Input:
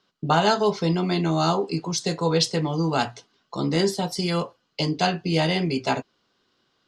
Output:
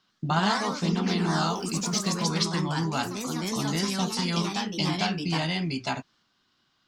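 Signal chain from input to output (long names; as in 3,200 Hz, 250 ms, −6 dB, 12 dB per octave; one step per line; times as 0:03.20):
0:01.55–0:02.23: mu-law and A-law mismatch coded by A
downward compressor 2 to 1, threshold −25 dBFS, peak gain reduction 6 dB
parametric band 460 Hz −13.5 dB 0.73 octaves
delay with pitch and tempo change per echo 97 ms, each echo +2 semitones, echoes 3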